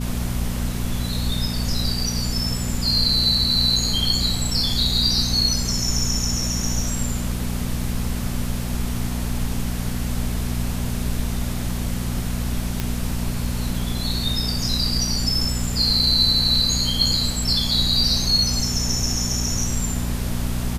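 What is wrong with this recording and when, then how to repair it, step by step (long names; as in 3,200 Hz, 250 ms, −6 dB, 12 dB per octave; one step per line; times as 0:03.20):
mains hum 60 Hz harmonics 4 −26 dBFS
0:12.80: click −9 dBFS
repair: click removal
hum removal 60 Hz, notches 4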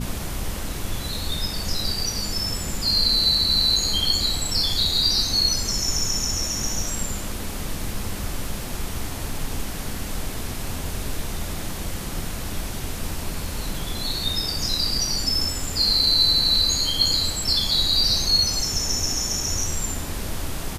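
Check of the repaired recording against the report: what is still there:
none of them is left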